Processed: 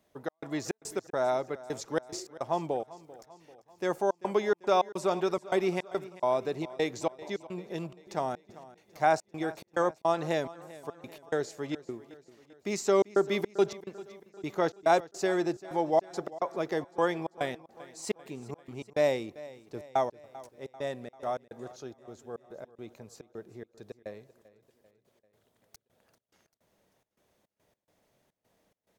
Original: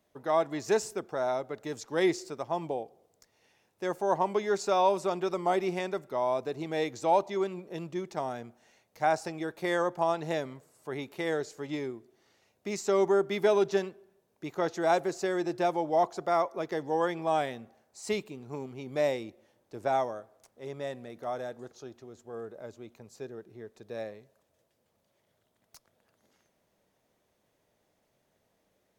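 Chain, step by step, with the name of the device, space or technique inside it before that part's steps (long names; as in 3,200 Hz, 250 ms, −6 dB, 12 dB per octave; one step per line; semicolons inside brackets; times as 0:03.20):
trance gate with a delay (gate pattern "xx.xx.x.x" 106 BPM −60 dB; repeating echo 392 ms, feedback 54%, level −18.5 dB)
level +2 dB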